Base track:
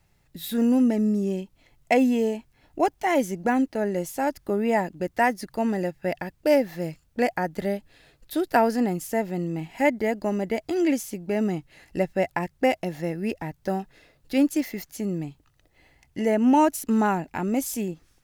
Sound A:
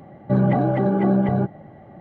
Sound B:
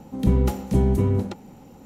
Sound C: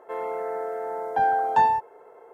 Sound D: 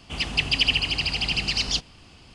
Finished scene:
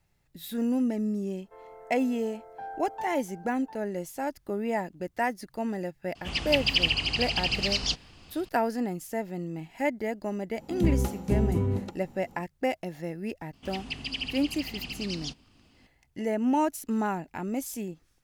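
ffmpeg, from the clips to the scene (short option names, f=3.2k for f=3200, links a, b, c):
-filter_complex "[4:a]asplit=2[a][b];[0:a]volume=-6.5dB[c];[3:a]asplit=2[d][e];[e]adelay=699.7,volume=-11dB,highshelf=f=4k:g=-15.7[f];[d][f]amix=inputs=2:normalize=0[g];[a]lowpass=8.8k[h];[b]equalizer=f=250:t=o:w=0.59:g=9.5[i];[g]atrim=end=2.33,asetpts=PTS-STARTPTS,volume=-18dB,afade=t=in:d=0.004:c=hsin,afade=t=out:st=2.326:d=0.004:c=hsin,adelay=1420[j];[h]atrim=end=2.34,asetpts=PTS-STARTPTS,volume=-3dB,afade=t=in:d=0.004:c=hsin,afade=t=out:st=2.336:d=0.004:c=hsin,adelay=6150[k];[2:a]atrim=end=1.85,asetpts=PTS-STARTPTS,volume=-6dB,afade=t=in:d=0.004:c=hsin,afade=t=out:st=1.846:d=0.004:c=hsin,adelay=10570[l];[i]atrim=end=2.34,asetpts=PTS-STARTPTS,volume=-13dB,afade=t=in:d=0.004:c=hsin,afade=t=out:st=2.336:d=0.004:c=hsin,adelay=13530[m];[c][j][k][l][m]amix=inputs=5:normalize=0"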